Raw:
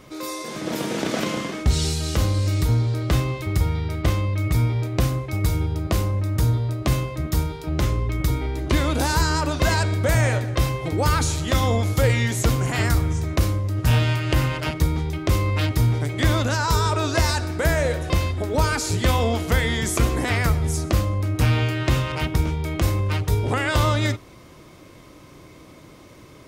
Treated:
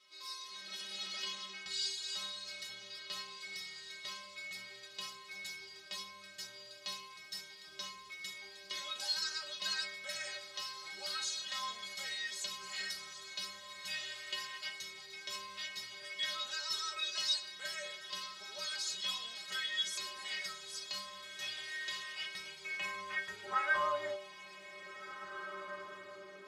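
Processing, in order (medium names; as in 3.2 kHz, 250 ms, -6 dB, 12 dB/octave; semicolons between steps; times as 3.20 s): inharmonic resonator 190 Hz, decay 0.38 s, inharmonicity 0.008; band-pass sweep 4 kHz -> 430 Hz, 22.01–25.33 s; echo that smears into a reverb 1800 ms, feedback 44%, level -11 dB; trim +9.5 dB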